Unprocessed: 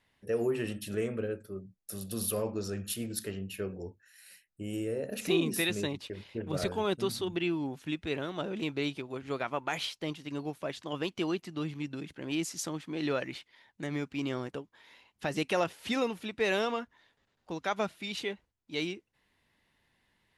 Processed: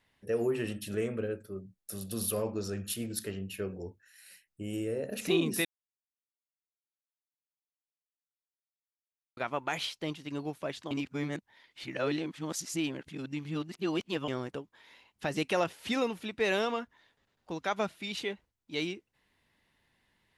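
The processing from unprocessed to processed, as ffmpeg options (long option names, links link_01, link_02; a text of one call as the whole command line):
ffmpeg -i in.wav -filter_complex "[0:a]asplit=5[link_01][link_02][link_03][link_04][link_05];[link_01]atrim=end=5.65,asetpts=PTS-STARTPTS,afade=type=out:start_time=5.646:duration=0.004:curve=hsin[link_06];[link_02]atrim=start=5.65:end=9.37,asetpts=PTS-STARTPTS,volume=0[link_07];[link_03]atrim=start=9.37:end=10.912,asetpts=PTS-STARTPTS,afade=type=in:duration=0.004:curve=hsin[link_08];[link_04]atrim=start=10.908:end=14.282,asetpts=PTS-STARTPTS,areverse[link_09];[link_05]atrim=start=14.278[link_10];[link_06][link_07][link_08]concat=n=3:v=0:a=1[link_11];[link_11][link_09]acrossfade=duration=0.004:curve1=hsin:curve2=hsin[link_12];[link_12][link_10]acrossfade=duration=0.004:curve1=hsin:curve2=hsin" out.wav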